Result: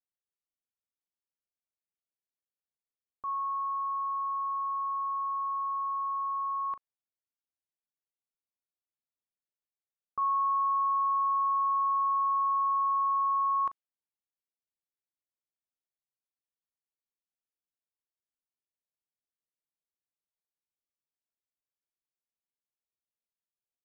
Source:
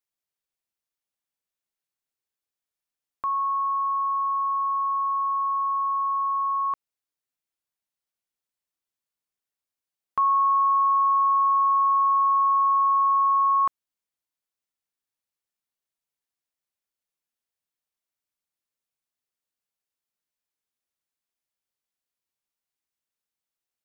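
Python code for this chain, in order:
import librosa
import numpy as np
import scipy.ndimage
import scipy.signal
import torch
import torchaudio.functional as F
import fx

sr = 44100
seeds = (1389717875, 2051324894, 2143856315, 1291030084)

y = fx.env_lowpass(x, sr, base_hz=730.0, full_db=-19.5)
y = fx.doubler(y, sr, ms=39.0, db=-13.5)
y = F.gain(torch.from_numpy(y), -8.5).numpy()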